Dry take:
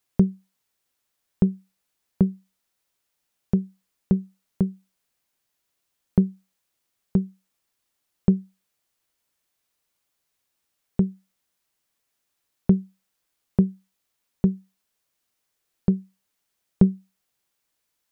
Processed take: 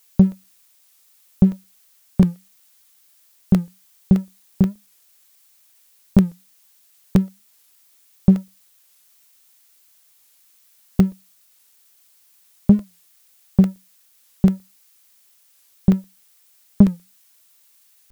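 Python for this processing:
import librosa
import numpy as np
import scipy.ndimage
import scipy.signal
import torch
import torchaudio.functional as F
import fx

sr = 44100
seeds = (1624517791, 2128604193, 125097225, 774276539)

y = fx.low_shelf(x, sr, hz=440.0, db=11.5)
y = fx.leveller(y, sr, passes=1)
y = fx.dmg_noise_colour(y, sr, seeds[0], colour='blue', level_db=-50.0)
y = fx.buffer_crackle(y, sr, first_s=0.32, period_s=0.12, block=64, kind='zero')
y = fx.record_warp(y, sr, rpm=45.0, depth_cents=160.0)
y = F.gain(torch.from_numpy(y), -6.5).numpy()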